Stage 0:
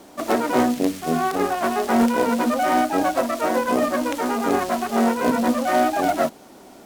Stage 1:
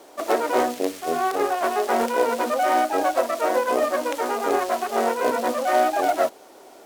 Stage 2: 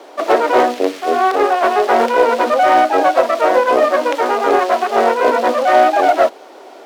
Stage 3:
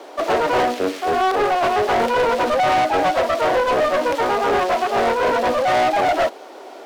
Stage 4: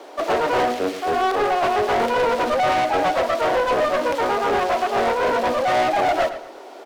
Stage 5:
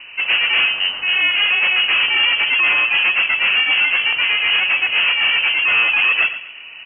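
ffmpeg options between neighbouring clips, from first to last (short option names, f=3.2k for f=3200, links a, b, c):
-af "lowshelf=f=290:t=q:w=1.5:g=-12,volume=-1.5dB"
-filter_complex "[0:a]acrossover=split=230 5000:gain=0.0708 1 0.2[a][b][c];[a][b][c]amix=inputs=3:normalize=0,acontrast=71,volume=3dB"
-af "asoftclip=type=tanh:threshold=-14dB"
-filter_complex "[0:a]asplit=2[a][b];[b]adelay=114,lowpass=f=4.5k:p=1,volume=-12dB,asplit=2[c][d];[d]adelay=114,lowpass=f=4.5k:p=1,volume=0.33,asplit=2[e][f];[f]adelay=114,lowpass=f=4.5k:p=1,volume=0.33[g];[a][c][e][g]amix=inputs=4:normalize=0,volume=-2dB"
-af "lowpass=f=2.8k:t=q:w=0.5098,lowpass=f=2.8k:t=q:w=0.6013,lowpass=f=2.8k:t=q:w=0.9,lowpass=f=2.8k:t=q:w=2.563,afreqshift=-3300,volume=3.5dB"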